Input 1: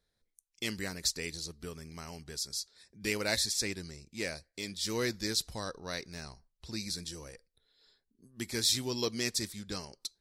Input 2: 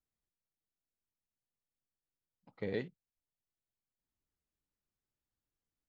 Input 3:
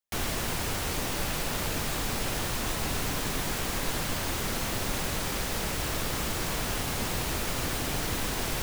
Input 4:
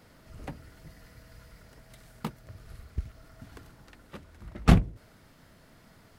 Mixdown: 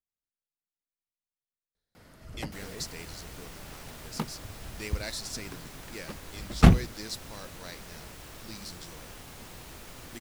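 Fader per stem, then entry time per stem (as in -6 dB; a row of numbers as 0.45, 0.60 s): -6.5, -9.5, -15.5, +2.0 dB; 1.75, 0.00, 2.40, 1.95 s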